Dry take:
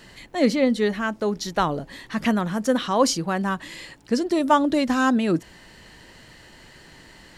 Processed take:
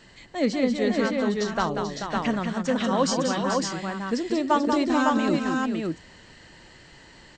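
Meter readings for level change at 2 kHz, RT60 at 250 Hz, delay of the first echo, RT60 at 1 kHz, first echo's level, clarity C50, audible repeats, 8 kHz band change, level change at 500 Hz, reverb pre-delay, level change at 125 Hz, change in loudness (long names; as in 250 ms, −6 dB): −1.5 dB, no reverb audible, 188 ms, no reverb audible, −6.0 dB, no reverb audible, 3, −2.0 dB, −1.5 dB, no reverb audible, −1.5 dB, −2.0 dB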